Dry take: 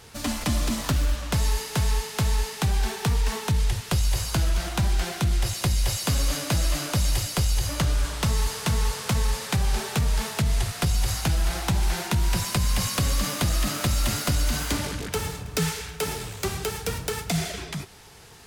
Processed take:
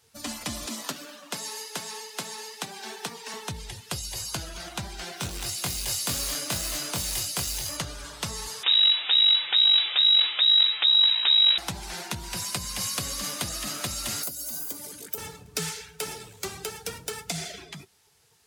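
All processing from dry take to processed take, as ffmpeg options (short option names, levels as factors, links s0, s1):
-filter_complex "[0:a]asettb=1/sr,asplit=3[s0][s1][s2];[s0]atrim=end=0.664[s3];[s1]atrim=start=0.66:end=3.34,asetpts=PTS-STARTPTS,afade=t=in:d=0.004:c=qsin,afade=t=out:st=2.676:d=0.004:c=qsin,highpass=f=190:w=0.5412,highpass=f=190:w=1.3066,acrusher=bits=8:mix=0:aa=0.5[s4];[s2]atrim=start=3.336[s5];[s3][s4]acrossfade=d=0.004:c1=hsin:c2=qsin[s6];[s6][s5]acrossfade=d=0.004:c1=qsin:c2=hsin,asettb=1/sr,asplit=3[s7][s8][s9];[s7]atrim=end=5.174[s10];[s8]atrim=start=5.17:end=7.77,asetpts=PTS-STARTPTS,afade=t=in:d=0.004:c=qsin,afade=t=out:st=2.596:d=0.004:c=qsin,acrusher=bits=2:mode=log:mix=0:aa=0.000001,asplit=2[s11][s12];[s12]adelay=23,volume=0.562[s13];[s11][s13]amix=inputs=2:normalize=0,atrim=end_sample=114660[s14];[s9]atrim=start=7.766[s15];[s10][s14]acrossfade=d=0.004:c1=hsin:c2=qsin[s16];[s16][s15]acrossfade=d=0.004:c1=qsin:c2=hsin,asettb=1/sr,asplit=3[s17][s18][s19];[s17]atrim=end=8.634[s20];[s18]atrim=start=8.63:end=11.58,asetpts=PTS-STARTPTS,afade=t=in:d=0.004:c=qsin,afade=t=out:st=2.946:d=0.004:c=qsin,acontrast=89,aeval=exprs='clip(val(0),-1,0.0398)':c=same,lowpass=f=3300:t=q:w=0.5098,lowpass=f=3300:t=q:w=0.6013,lowpass=f=3300:t=q:w=0.9,lowpass=f=3300:t=q:w=2.563,afreqshift=-3900[s21];[s19]atrim=start=11.576[s22];[s20][s21]acrossfade=d=0.004:c1=hsin:c2=qsin[s23];[s23][s22]acrossfade=d=0.004:c1=qsin:c2=hsin,asettb=1/sr,asplit=3[s24][s25][s26];[s24]atrim=end=14.234[s27];[s25]atrim=start=14.23:end=15.18,asetpts=PTS-STARTPTS,afade=t=in:d=0.004:c=qsin,afade=t=out:st=0.946:d=0.004:c=qsin,aemphasis=mode=production:type=bsi,acrossover=split=600|1200[s28][s29][s30];[s28]acompressor=threshold=0.02:ratio=4[s31];[s29]acompressor=threshold=0.00355:ratio=4[s32];[s30]acompressor=threshold=0.0224:ratio=4[s33];[s31][s32][s33]amix=inputs=3:normalize=0[s34];[s26]atrim=start=15.176[s35];[s27][s34]acrossfade=d=0.004:c1=hsin:c2=qsin[s36];[s36][s35]acrossfade=d=0.004:c1=qsin:c2=hsin,afftdn=nr=13:nf=-38,highpass=f=240:p=1,highshelf=f=3400:g=9,volume=0.501"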